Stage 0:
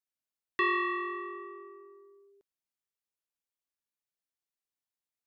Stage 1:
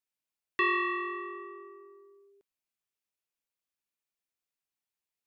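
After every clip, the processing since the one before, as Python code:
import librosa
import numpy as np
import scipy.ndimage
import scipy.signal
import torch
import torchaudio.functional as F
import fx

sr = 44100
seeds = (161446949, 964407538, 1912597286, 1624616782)

y = fx.peak_eq(x, sr, hz=2500.0, db=4.5, octaves=0.35)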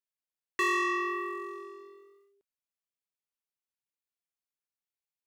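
y = fx.leveller(x, sr, passes=2)
y = F.gain(torch.from_numpy(y), -3.5).numpy()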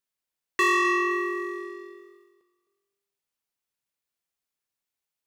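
y = fx.echo_feedback(x, sr, ms=259, feedback_pct=37, wet_db=-14.5)
y = F.gain(torch.from_numpy(y), 6.0).numpy()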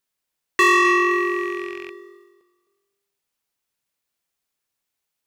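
y = fx.rattle_buzz(x, sr, strikes_db=-51.0, level_db=-30.0)
y = F.gain(torch.from_numpy(y), 6.5).numpy()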